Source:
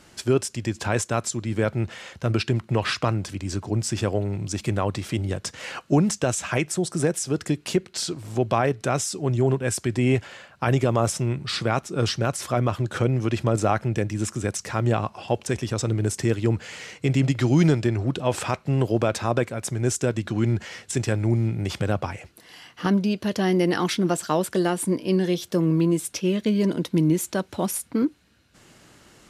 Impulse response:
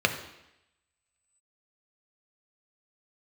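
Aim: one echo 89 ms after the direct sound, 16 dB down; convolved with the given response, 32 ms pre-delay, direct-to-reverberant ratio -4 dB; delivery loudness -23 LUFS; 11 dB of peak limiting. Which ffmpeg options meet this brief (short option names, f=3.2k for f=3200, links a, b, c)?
-filter_complex "[0:a]alimiter=limit=-19.5dB:level=0:latency=1,aecho=1:1:89:0.158,asplit=2[a][b];[1:a]atrim=start_sample=2205,adelay=32[c];[b][c]afir=irnorm=-1:irlink=0,volume=-10dB[d];[a][d]amix=inputs=2:normalize=0,volume=1dB"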